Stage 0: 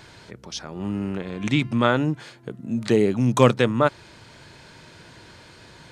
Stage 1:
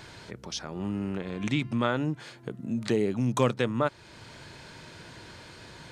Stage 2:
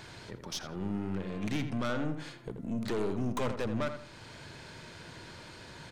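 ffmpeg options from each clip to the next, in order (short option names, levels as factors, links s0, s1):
-af "acompressor=threshold=0.0178:ratio=1.5"
-filter_complex "[0:a]aeval=exprs='(tanh(28.2*val(0)+0.45)-tanh(0.45))/28.2':c=same,asplit=2[s0][s1];[s1]adelay=83,lowpass=f=2400:p=1,volume=0.398,asplit=2[s2][s3];[s3]adelay=83,lowpass=f=2400:p=1,volume=0.37,asplit=2[s4][s5];[s5]adelay=83,lowpass=f=2400:p=1,volume=0.37,asplit=2[s6][s7];[s7]adelay=83,lowpass=f=2400:p=1,volume=0.37[s8];[s0][s2][s4][s6][s8]amix=inputs=5:normalize=0"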